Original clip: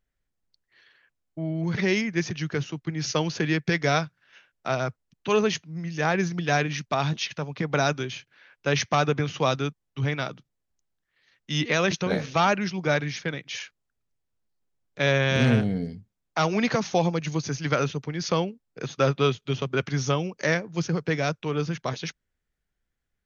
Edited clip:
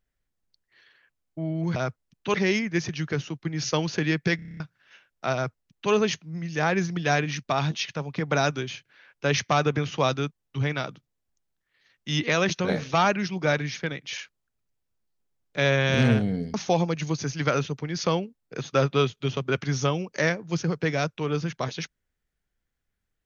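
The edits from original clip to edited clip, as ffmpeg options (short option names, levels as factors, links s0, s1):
-filter_complex "[0:a]asplit=12[s0][s1][s2][s3][s4][s5][s6][s7][s8][s9][s10][s11];[s0]atrim=end=1.762[s12];[s1]atrim=start=4.758:end=5.342[s13];[s2]atrim=start=1.758:end=3.812[s14];[s3]atrim=start=3.778:end=3.812[s15];[s4]atrim=start=3.778:end=3.812[s16];[s5]atrim=start=3.778:end=3.812[s17];[s6]atrim=start=3.778:end=3.812[s18];[s7]atrim=start=3.778:end=3.812[s19];[s8]atrim=start=3.778:end=3.812[s20];[s9]atrim=start=3.778:end=3.812[s21];[s10]atrim=start=4.018:end=15.962[s22];[s11]atrim=start=16.788[s23];[s12][s13]acrossfade=d=0.004:c1=hsin:c2=hsin[s24];[s24][s14]acrossfade=d=0.004:c1=hsin:c2=hsin[s25];[s25][s15]acrossfade=d=0.004:c1=hsin:c2=hsin[s26];[s26][s16]acrossfade=d=0.004:c1=hsin:c2=hsin[s27];[s27][s17]acrossfade=d=0.004:c1=hsin:c2=hsin[s28];[s28][s18]acrossfade=d=0.004:c1=hsin:c2=hsin[s29];[s29][s19]acrossfade=d=0.004:c1=hsin:c2=hsin[s30];[s30][s20]acrossfade=d=0.004:c1=hsin:c2=hsin[s31];[s31][s21]acrossfade=d=0.004:c1=hsin:c2=hsin[s32];[s32][s22]acrossfade=d=0.004:c1=hsin:c2=hsin[s33];[s33][s23]acrossfade=d=0.004:c1=hsin:c2=hsin"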